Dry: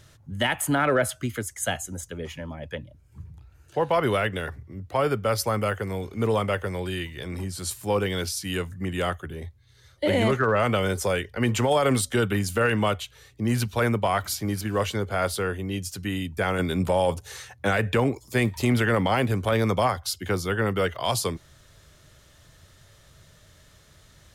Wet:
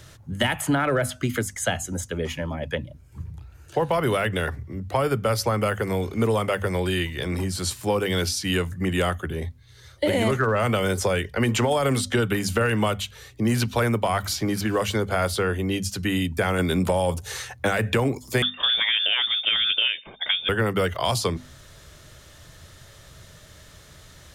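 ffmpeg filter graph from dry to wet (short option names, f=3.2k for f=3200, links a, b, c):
-filter_complex "[0:a]asettb=1/sr,asplit=3[a][b][c];[a]atrim=end=18.424[d];[b]atrim=start=18.42:end=20.49,asetpts=PTS-STARTPTS,afade=t=in:d=0.004:c=qsin,afade=t=out:st=2.066:d=0.004:c=qsin,highpass=160,lowpass=f=3.1k:t=q:w=0.5098,lowpass=f=3.1k:t=q:w=0.6013,lowpass=f=3.1k:t=q:w=0.9,lowpass=f=3.1k:t=q:w=2.563,afreqshift=-3700[e];[c]atrim=start=20.486[f];[d][e]acrossfade=d=0.004:c1=hsin:c2=qsin[g];[g][f]acrossfade=d=0.004:c1=qsin:c2=hsin,acrossover=split=180|6600[h][i][j];[h]acompressor=threshold=-33dB:ratio=4[k];[i]acompressor=threshold=-28dB:ratio=4[l];[j]acompressor=threshold=-44dB:ratio=4[m];[k][l][m]amix=inputs=3:normalize=0,bandreject=f=50:t=h:w=6,bandreject=f=100:t=h:w=6,bandreject=f=150:t=h:w=6,bandreject=f=200:t=h:w=6,bandreject=f=250:t=h:w=6,volume=7dB"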